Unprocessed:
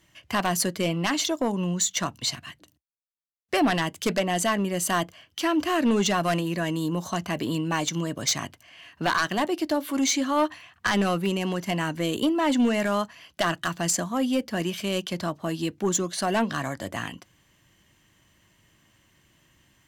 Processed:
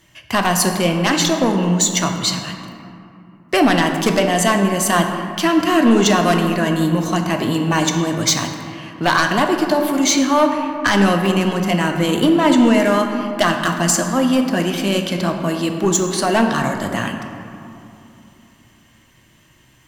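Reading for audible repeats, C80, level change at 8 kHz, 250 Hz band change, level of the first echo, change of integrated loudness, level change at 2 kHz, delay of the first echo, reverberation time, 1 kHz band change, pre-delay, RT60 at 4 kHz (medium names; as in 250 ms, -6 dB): no echo, 6.5 dB, +8.0 dB, +10.0 dB, no echo, +9.0 dB, +9.0 dB, no echo, 2.8 s, +9.5 dB, 3 ms, 1.3 s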